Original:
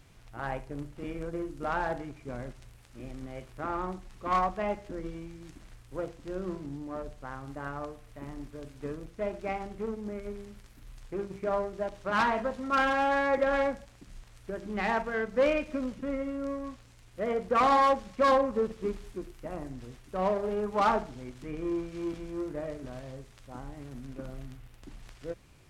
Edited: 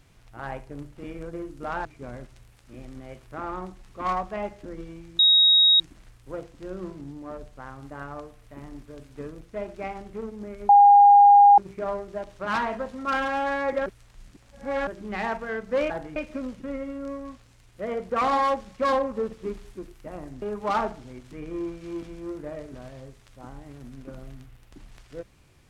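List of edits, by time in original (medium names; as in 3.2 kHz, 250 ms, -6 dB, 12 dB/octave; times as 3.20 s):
1.85–2.11 s: move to 15.55 s
5.45 s: add tone 3.78 kHz -13.5 dBFS 0.61 s
10.34–11.23 s: bleep 812 Hz -9.5 dBFS
13.51–14.52 s: reverse
19.81–20.53 s: delete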